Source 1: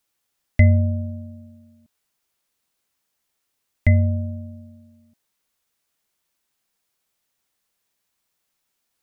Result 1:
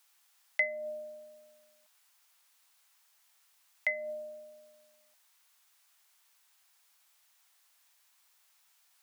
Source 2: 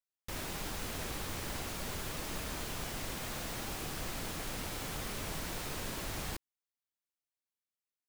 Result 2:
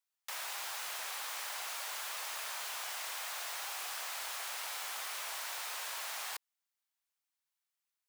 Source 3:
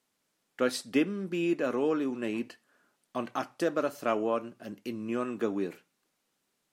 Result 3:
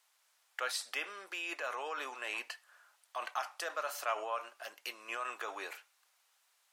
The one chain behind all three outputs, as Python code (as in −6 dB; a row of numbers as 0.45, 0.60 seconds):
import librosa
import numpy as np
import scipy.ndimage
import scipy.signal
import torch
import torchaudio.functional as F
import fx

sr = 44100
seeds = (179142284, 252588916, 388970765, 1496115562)

p1 = scipy.signal.sosfilt(scipy.signal.butter(4, 750.0, 'highpass', fs=sr, output='sos'), x)
p2 = fx.over_compress(p1, sr, threshold_db=-45.0, ratio=-0.5)
p3 = p1 + F.gain(torch.from_numpy(p2), -2.0).numpy()
y = F.gain(torch.from_numpy(p3), -2.0).numpy()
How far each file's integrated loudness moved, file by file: −15.5, +0.5, −8.0 LU